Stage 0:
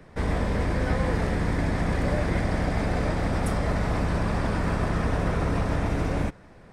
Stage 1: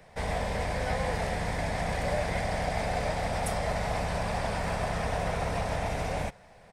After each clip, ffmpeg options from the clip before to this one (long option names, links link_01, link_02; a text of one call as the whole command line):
ffmpeg -i in.wav -af "firequalizer=gain_entry='entry(180,0);entry(320,-8);entry(450,3);entry(720,11);entry(1200,1);entry(2100,8);entry(9800,11)':delay=0.05:min_phase=1,volume=-7.5dB" out.wav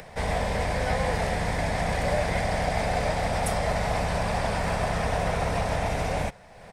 ffmpeg -i in.wav -af "acompressor=mode=upward:threshold=-42dB:ratio=2.5,volume=4dB" out.wav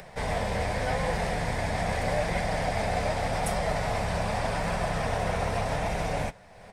ffmpeg -i in.wav -af "flanger=delay=5.1:depth=5.7:regen=-45:speed=0.84:shape=triangular,volume=2dB" out.wav